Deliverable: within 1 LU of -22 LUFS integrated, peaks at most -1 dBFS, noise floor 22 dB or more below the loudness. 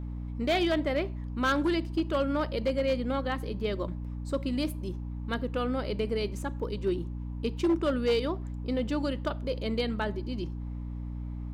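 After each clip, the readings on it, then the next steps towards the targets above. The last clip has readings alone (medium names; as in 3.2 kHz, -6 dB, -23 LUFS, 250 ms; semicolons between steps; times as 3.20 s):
clipped samples 0.6%; clipping level -20.5 dBFS; hum 60 Hz; highest harmonic 300 Hz; hum level -34 dBFS; loudness -31.0 LUFS; peak level -20.5 dBFS; loudness target -22.0 LUFS
-> clip repair -20.5 dBFS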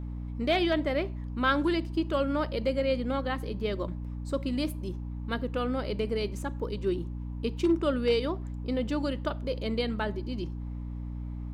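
clipped samples 0.0%; hum 60 Hz; highest harmonic 300 Hz; hum level -34 dBFS
-> de-hum 60 Hz, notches 5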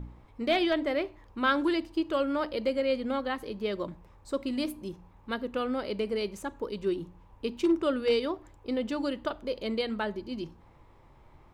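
hum not found; loudness -31.0 LUFS; peak level -13.0 dBFS; loudness target -22.0 LUFS
-> trim +9 dB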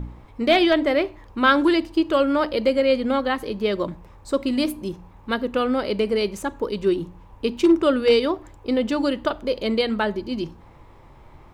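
loudness -22.0 LUFS; peak level -4.0 dBFS; noise floor -48 dBFS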